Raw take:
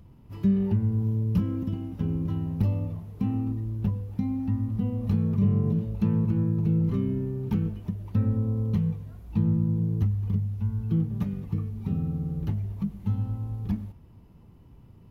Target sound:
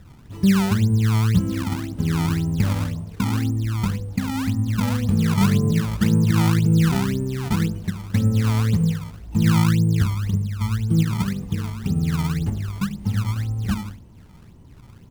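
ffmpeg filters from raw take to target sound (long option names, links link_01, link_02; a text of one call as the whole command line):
ffmpeg -i in.wav -filter_complex "[0:a]bandreject=frequency=51.99:width_type=h:width=4,bandreject=frequency=103.98:width_type=h:width=4,bandreject=frequency=155.97:width_type=h:width=4,bandreject=frequency=207.96:width_type=h:width=4,bandreject=frequency=259.95:width_type=h:width=4,bandreject=frequency=311.94:width_type=h:width=4,bandreject=frequency=363.93:width_type=h:width=4,bandreject=frequency=415.92:width_type=h:width=4,bandreject=frequency=467.91:width_type=h:width=4,bandreject=frequency=519.9:width_type=h:width=4,bandreject=frequency=571.89:width_type=h:width=4,bandreject=frequency=623.88:width_type=h:width=4,bandreject=frequency=675.87:width_type=h:width=4,bandreject=frequency=727.86:width_type=h:width=4,bandreject=frequency=779.85:width_type=h:width=4,bandreject=frequency=831.84:width_type=h:width=4,bandreject=frequency=883.83:width_type=h:width=4,bandreject=frequency=935.82:width_type=h:width=4,bandreject=frequency=987.81:width_type=h:width=4,bandreject=frequency=1039.8:width_type=h:width=4,bandreject=frequency=1091.79:width_type=h:width=4,bandreject=frequency=1143.78:width_type=h:width=4,bandreject=frequency=1195.77:width_type=h:width=4,bandreject=frequency=1247.76:width_type=h:width=4,bandreject=frequency=1299.75:width_type=h:width=4,bandreject=frequency=1351.74:width_type=h:width=4,bandreject=frequency=1403.73:width_type=h:width=4,bandreject=frequency=1455.72:width_type=h:width=4,bandreject=frequency=1507.71:width_type=h:width=4,bandreject=frequency=1559.7:width_type=h:width=4,bandreject=frequency=1611.69:width_type=h:width=4,bandreject=frequency=1663.68:width_type=h:width=4,asplit=2[link_01][link_02];[link_02]adelay=73,lowpass=frequency=2000:poles=1,volume=-14dB,asplit=2[link_03][link_04];[link_04]adelay=73,lowpass=frequency=2000:poles=1,volume=0.46,asplit=2[link_05][link_06];[link_06]adelay=73,lowpass=frequency=2000:poles=1,volume=0.46,asplit=2[link_07][link_08];[link_08]adelay=73,lowpass=frequency=2000:poles=1,volume=0.46[link_09];[link_03][link_05][link_07][link_09]amix=inputs=4:normalize=0[link_10];[link_01][link_10]amix=inputs=2:normalize=0,acrusher=samples=23:mix=1:aa=0.000001:lfo=1:lforange=36.8:lforate=1.9,atempo=1,volume=6dB" out.wav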